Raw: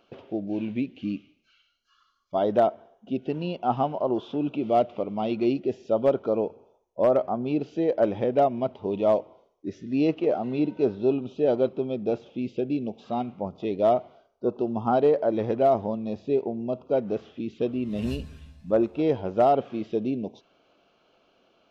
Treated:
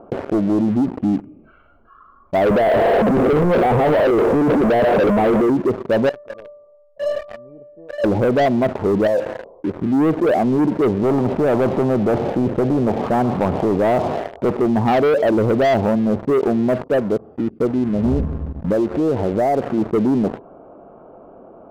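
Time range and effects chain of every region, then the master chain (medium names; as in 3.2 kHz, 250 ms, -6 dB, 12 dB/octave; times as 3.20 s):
2.46–5.49 s: one-bit comparator + peaking EQ 480 Hz +12 dB 0.66 oct
6.09–8.04 s: self-modulated delay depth 0.15 ms + distance through air 450 m + feedback comb 590 Hz, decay 0.51 s, mix 100%
9.07–9.78 s: compression 2.5:1, threshold -38 dBFS + small resonant body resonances 520/2800 Hz, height 13 dB, ringing for 80 ms
11.03–14.51 s: high-pass 56 Hz 24 dB/octave + spectrum-flattening compressor 2:1
16.83–18.03 s: whistle 4.7 kHz -51 dBFS + upward expansion, over -45 dBFS
18.72–19.78 s: peaking EQ 310 Hz +2.5 dB 1.6 oct + compression 2:1, threshold -36 dBFS
whole clip: low-pass 1 kHz 24 dB/octave; waveshaping leveller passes 3; level flattener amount 50%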